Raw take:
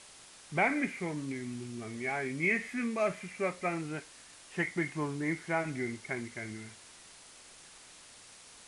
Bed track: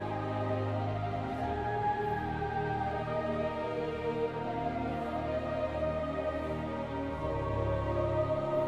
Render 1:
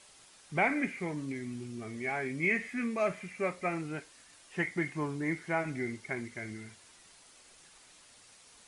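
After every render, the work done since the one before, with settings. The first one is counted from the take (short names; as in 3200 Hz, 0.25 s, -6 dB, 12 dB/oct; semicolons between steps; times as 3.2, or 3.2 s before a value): denoiser 6 dB, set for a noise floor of -55 dBFS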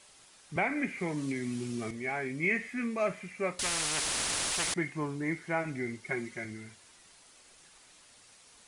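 0.56–1.91 three-band squash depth 70%; 3.59–4.74 spectral compressor 10:1; 6.05–6.45 comb 5.5 ms, depth 77%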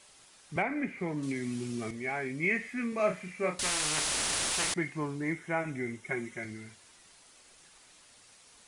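0.62–1.23 high shelf 2600 Hz -10 dB; 2.89–4.72 doubler 33 ms -6 dB; 5.32–6.43 bell 4500 Hz -13 dB 0.22 oct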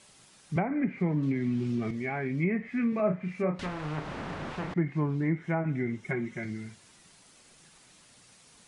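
treble ducked by the level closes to 1200 Hz, closed at -27 dBFS; bell 160 Hz +10.5 dB 1.5 oct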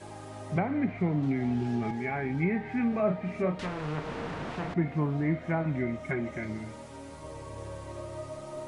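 add bed track -9 dB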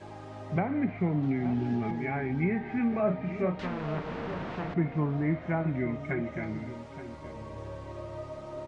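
air absorption 120 m; outdoor echo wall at 150 m, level -12 dB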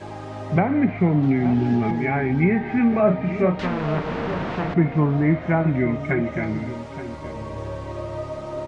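gain +9.5 dB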